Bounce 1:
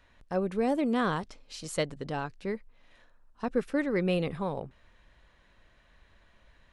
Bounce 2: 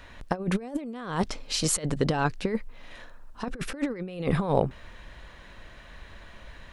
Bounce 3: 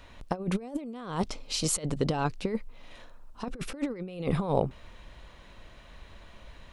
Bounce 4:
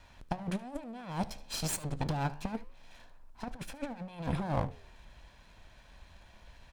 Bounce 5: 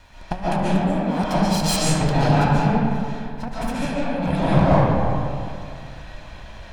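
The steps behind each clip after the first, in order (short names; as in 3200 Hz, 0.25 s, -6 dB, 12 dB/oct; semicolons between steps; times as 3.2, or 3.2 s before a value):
negative-ratio compressor -35 dBFS, ratio -0.5; gain +8.5 dB
bell 1700 Hz -7 dB 0.45 oct; gain -2.5 dB
minimum comb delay 1.2 ms; flange 1.1 Hz, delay 8.9 ms, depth 6.1 ms, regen +88%; echo 74 ms -20 dB
reverb RT60 2.4 s, pre-delay 0.1 s, DRR -9.5 dB; gain +7.5 dB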